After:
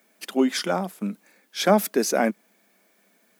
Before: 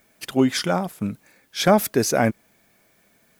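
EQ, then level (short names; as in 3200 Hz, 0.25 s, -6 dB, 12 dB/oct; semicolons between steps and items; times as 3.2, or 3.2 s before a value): elliptic high-pass 190 Hz, stop band 40 dB; -1.5 dB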